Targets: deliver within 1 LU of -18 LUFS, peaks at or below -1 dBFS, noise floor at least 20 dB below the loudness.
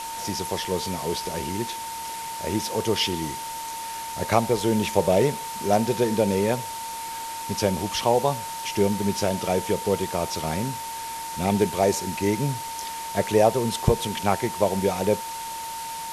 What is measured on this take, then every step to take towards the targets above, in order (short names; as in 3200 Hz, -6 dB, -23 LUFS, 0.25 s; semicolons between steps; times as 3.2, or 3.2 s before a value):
steady tone 910 Hz; tone level -32 dBFS; noise floor -34 dBFS; noise floor target -46 dBFS; loudness -25.5 LUFS; peak -3.5 dBFS; loudness target -18.0 LUFS
-> notch 910 Hz, Q 30; denoiser 12 dB, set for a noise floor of -34 dBFS; gain +7.5 dB; limiter -1 dBFS